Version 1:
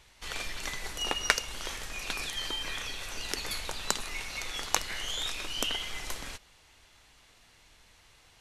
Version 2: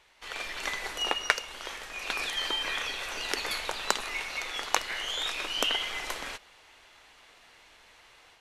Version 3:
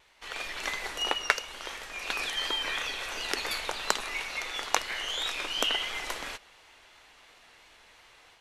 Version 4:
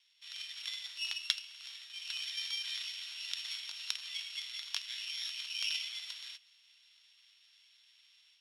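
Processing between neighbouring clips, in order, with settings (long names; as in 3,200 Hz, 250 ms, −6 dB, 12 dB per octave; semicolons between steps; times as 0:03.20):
bass and treble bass −14 dB, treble −8 dB; automatic gain control gain up to 6.5 dB
pitch vibrato 2.9 Hz 38 cents
samples sorted by size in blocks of 8 samples; four-pole ladder band-pass 3,800 Hz, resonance 50%; level +4.5 dB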